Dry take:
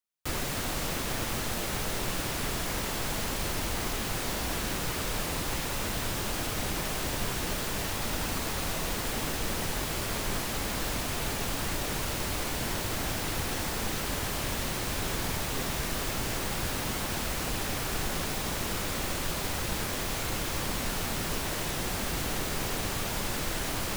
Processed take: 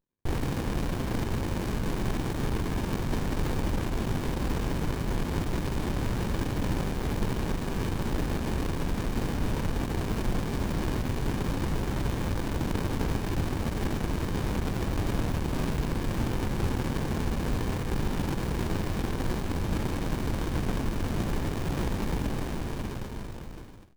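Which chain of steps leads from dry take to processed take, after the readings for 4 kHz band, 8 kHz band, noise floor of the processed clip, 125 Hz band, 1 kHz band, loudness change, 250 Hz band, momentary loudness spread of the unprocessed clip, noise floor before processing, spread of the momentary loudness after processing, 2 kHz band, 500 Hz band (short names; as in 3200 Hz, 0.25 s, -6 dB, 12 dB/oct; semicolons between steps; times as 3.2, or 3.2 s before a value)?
-8.0 dB, -11.5 dB, -35 dBFS, +6.5 dB, -1.5 dB, 0.0 dB, +6.0 dB, 0 LU, -33 dBFS, 1 LU, -5.0 dB, +1.5 dB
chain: ending faded out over 1.94 s; running maximum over 65 samples; gain +6.5 dB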